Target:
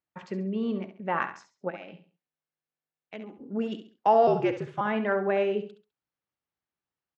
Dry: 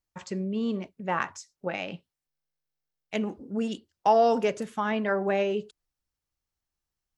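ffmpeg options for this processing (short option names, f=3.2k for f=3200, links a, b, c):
-filter_complex "[0:a]asplit=3[a][b][c];[a]afade=t=out:st=1.69:d=0.02[d];[b]acompressor=threshold=-43dB:ratio=2.5,afade=t=in:st=1.69:d=0.02,afade=t=out:st=3.39:d=0.02[e];[c]afade=t=in:st=3.39:d=0.02[f];[d][e][f]amix=inputs=3:normalize=0,asettb=1/sr,asplit=3[g][h][i];[g]atrim=end=4.274[j];[h]atrim=start=4.27:end=4.81,asetpts=PTS-STARTPTS,afade=t=in:d=0.004:c=qsin,afade=t=out:st=0.536:d=0.004:c=qsin,afreqshift=-66[k];[i]atrim=start=4.806[l];[j][k]acrossfade=d=0.004:c1=hsin:c2=qsin[m];[m][l]acrossfade=d=0.004:c1=qsin:c2=hsin,highpass=150,lowpass=2.8k,aecho=1:1:68|136|204:0.299|0.0955|0.0306"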